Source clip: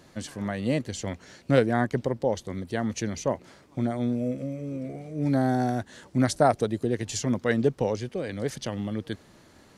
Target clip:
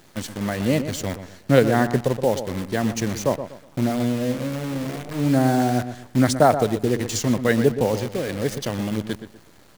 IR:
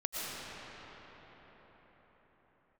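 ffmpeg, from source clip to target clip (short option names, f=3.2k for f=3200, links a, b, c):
-filter_complex "[0:a]acrusher=bits=7:dc=4:mix=0:aa=0.000001,asplit=2[a][b];[b]adelay=122,lowpass=f=2k:p=1,volume=-10dB,asplit=2[c][d];[d]adelay=122,lowpass=f=2k:p=1,volume=0.31,asplit=2[e][f];[f]adelay=122,lowpass=f=2k:p=1,volume=0.31[g];[a][c][e][g]amix=inputs=4:normalize=0,volume=5dB"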